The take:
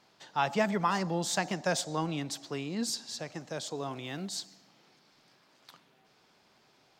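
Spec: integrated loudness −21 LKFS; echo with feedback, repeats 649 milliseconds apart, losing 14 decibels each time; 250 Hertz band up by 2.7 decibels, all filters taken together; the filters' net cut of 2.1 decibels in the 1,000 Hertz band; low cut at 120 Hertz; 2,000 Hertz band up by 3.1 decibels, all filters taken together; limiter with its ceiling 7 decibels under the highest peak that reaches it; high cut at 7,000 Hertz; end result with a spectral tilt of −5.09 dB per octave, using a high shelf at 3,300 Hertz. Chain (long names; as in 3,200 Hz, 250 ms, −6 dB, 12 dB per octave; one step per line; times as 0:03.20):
high-pass filter 120 Hz
low-pass filter 7,000 Hz
parametric band 250 Hz +4.5 dB
parametric band 1,000 Hz −4 dB
parametric band 2,000 Hz +7.5 dB
high-shelf EQ 3,300 Hz −7.5 dB
brickwall limiter −22 dBFS
repeating echo 649 ms, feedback 20%, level −14 dB
level +13.5 dB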